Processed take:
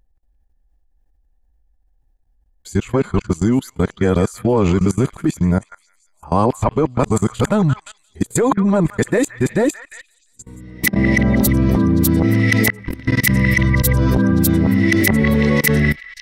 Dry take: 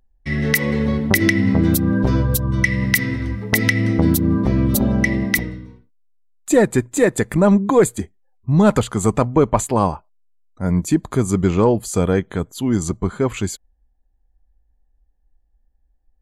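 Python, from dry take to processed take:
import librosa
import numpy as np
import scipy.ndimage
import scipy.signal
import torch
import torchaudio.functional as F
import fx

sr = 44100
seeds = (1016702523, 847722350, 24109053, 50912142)

y = np.flip(x).copy()
y = fx.echo_stepped(y, sr, ms=174, hz=1600.0, octaves=0.7, feedback_pct=70, wet_db=-9.0)
y = fx.level_steps(y, sr, step_db=22)
y = y * 10.0 ** (8.0 / 20.0)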